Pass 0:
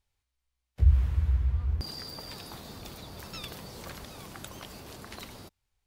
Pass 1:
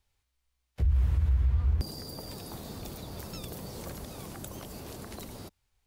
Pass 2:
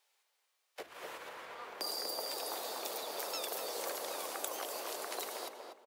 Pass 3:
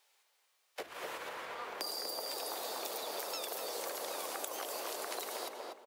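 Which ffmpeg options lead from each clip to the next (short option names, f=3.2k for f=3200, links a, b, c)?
-filter_complex "[0:a]acrossover=split=340|760|6500[a][b][c][d];[c]acompressor=threshold=-54dB:ratio=6[e];[a][b][e][d]amix=inputs=4:normalize=0,alimiter=limit=-23dB:level=0:latency=1:release=51,volume=4dB"
-filter_complex "[0:a]highpass=f=470:w=0.5412,highpass=f=470:w=1.3066,asplit=2[a][b];[b]adelay=243,lowpass=f=2k:p=1,volume=-3dB,asplit=2[c][d];[d]adelay=243,lowpass=f=2k:p=1,volume=0.32,asplit=2[e][f];[f]adelay=243,lowpass=f=2k:p=1,volume=0.32,asplit=2[g][h];[h]adelay=243,lowpass=f=2k:p=1,volume=0.32[i];[a][c][e][g][i]amix=inputs=5:normalize=0,volume=5dB"
-af "acompressor=threshold=-41dB:ratio=6,volume=4.5dB"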